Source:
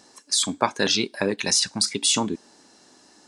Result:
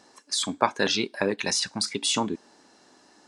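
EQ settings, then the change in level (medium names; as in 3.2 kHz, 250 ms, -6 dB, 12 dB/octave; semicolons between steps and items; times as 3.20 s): bass shelf 420 Hz -5.5 dB; treble shelf 3.6 kHz -10 dB; +1.5 dB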